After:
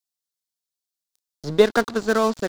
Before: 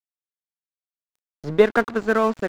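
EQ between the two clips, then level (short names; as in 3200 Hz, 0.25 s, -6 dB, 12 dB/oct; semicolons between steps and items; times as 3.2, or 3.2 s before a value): resonant high shelf 3200 Hz +8.5 dB, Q 1.5; 0.0 dB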